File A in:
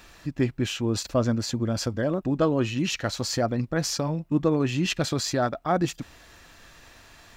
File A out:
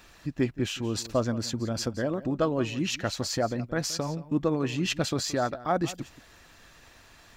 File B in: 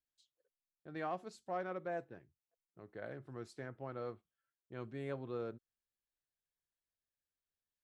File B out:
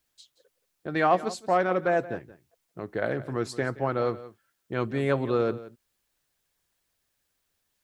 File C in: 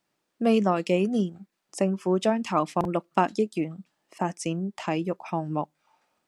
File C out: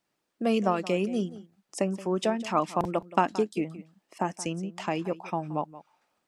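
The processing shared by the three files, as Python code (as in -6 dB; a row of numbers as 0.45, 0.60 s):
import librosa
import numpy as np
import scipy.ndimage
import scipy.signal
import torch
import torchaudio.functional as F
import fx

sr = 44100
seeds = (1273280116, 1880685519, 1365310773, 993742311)

y = x + 10.0 ** (-16.5 / 20.0) * np.pad(x, (int(174 * sr / 1000.0), 0))[:len(x)]
y = fx.hpss(y, sr, part='percussive', gain_db=4)
y = y * 10.0 ** (-30 / 20.0) / np.sqrt(np.mean(np.square(y)))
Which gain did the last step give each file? -5.5, +15.5, -4.5 dB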